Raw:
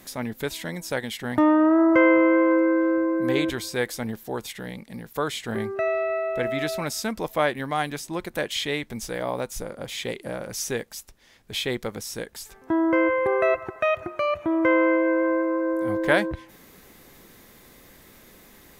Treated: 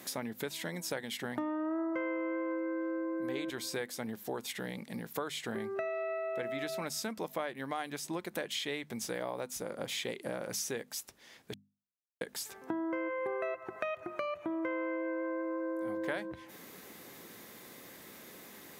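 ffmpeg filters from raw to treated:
ffmpeg -i in.wav -filter_complex "[0:a]asplit=3[link_01][link_02][link_03];[link_01]atrim=end=11.54,asetpts=PTS-STARTPTS,afade=type=out:start_time=11.536:duration=0.004:curve=hsin[link_04];[link_02]atrim=start=11.54:end=12.21,asetpts=PTS-STARTPTS,volume=0[link_05];[link_03]atrim=start=12.21,asetpts=PTS-STARTPTS,afade=type=in:duration=0.004:curve=hsin[link_06];[link_04][link_05][link_06]concat=n=3:v=0:a=1,acompressor=threshold=-34dB:ratio=6,highpass=150,bandreject=frequency=50:width_type=h:width=6,bandreject=frequency=100:width_type=h:width=6,bandreject=frequency=150:width_type=h:width=6,bandreject=frequency=200:width_type=h:width=6,bandreject=frequency=250:width_type=h:width=6" out.wav

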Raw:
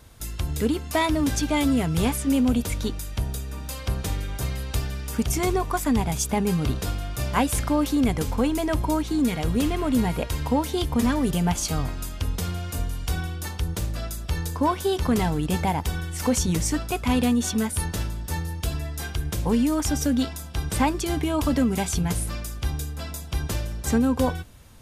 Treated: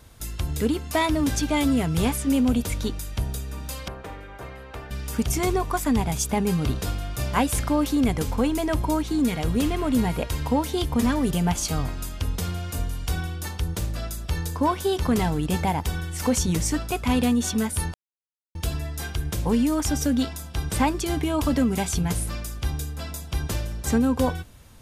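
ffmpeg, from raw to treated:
ffmpeg -i in.wav -filter_complex "[0:a]asettb=1/sr,asplit=3[link_01][link_02][link_03];[link_01]atrim=end=3.884[link_04];[link_02]atrim=start=3.88:end=4.91,asetpts=PTS-STARTPTS,afade=type=in:duration=0.004:curve=qsin,afade=type=out:start_time=1.026:duration=0.004:curve=qsin,acrossover=split=330 2300:gain=0.2 1 0.1[link_05][link_06][link_07];[link_05][link_06][link_07]amix=inputs=3:normalize=0[link_08];[link_03]atrim=start=4.906[link_09];[link_04][link_08]acrossfade=duration=0.004:curve1=hsin:curve2=qsin[link_10];[link_10][link_09]acrossfade=duration=0.004:curve1=qsin:curve2=hsin,asplit=3[link_11][link_12][link_13];[link_11]atrim=end=17.94,asetpts=PTS-STARTPTS,afade=type=out:start_time=17.936:duration=0.004:curve=hsin[link_14];[link_12]atrim=start=17.94:end=18.55,asetpts=PTS-STARTPTS,volume=0[link_15];[link_13]atrim=start=18.55,asetpts=PTS-STARTPTS,afade=type=in:duration=0.004:curve=hsin[link_16];[link_14][link_15][link_16]concat=n=3:v=0:a=1" out.wav

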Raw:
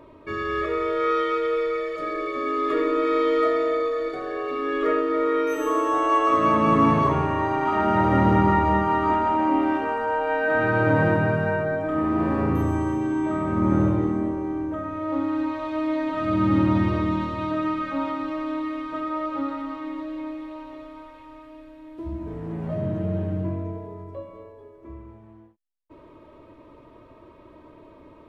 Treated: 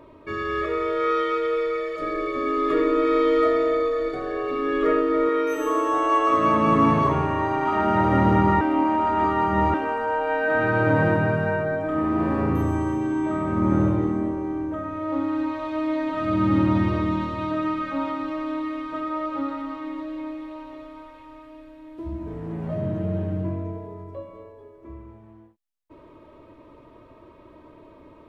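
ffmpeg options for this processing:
ffmpeg -i in.wav -filter_complex "[0:a]asettb=1/sr,asplit=3[link_01][link_02][link_03];[link_01]atrim=end=2.014[link_04];[link_02]atrim=start=2.01:end=5.29,asetpts=PTS-STARTPTS,afade=type=in:duration=0.004:curve=qsin,afade=type=out:start_time=3.276:duration=0.004:curve=qsin,lowshelf=frequency=210:gain=9.5[link_05];[link_03]atrim=start=5.286[link_06];[link_04][link_05]acrossfade=duration=0.004:curve1=hsin:curve2=qsin[link_07];[link_07][link_06]acrossfade=duration=0.004:curve1=qsin:curve2=hsin,asplit=3[link_08][link_09][link_10];[link_08]atrim=end=8.612[link_11];[link_09]atrim=start=8.608:end=9.742,asetpts=PTS-STARTPTS,areverse[link_12];[link_10]atrim=start=9.738[link_13];[link_11][link_12]acrossfade=duration=0.004:curve1=hsin:curve2=hsin[link_14];[link_14][link_13]acrossfade=duration=0.004:curve1=hsin:curve2=hsin" out.wav

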